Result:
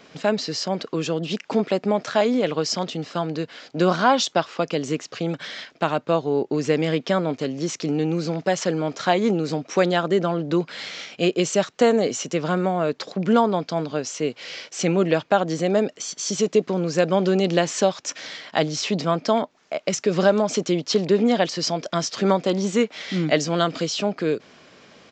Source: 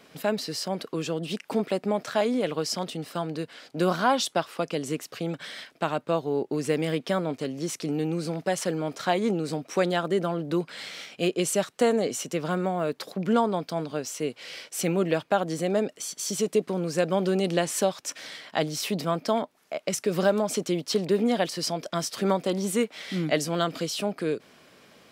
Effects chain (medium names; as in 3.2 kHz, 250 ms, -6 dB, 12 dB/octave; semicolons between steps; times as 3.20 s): resampled via 16 kHz; trim +5 dB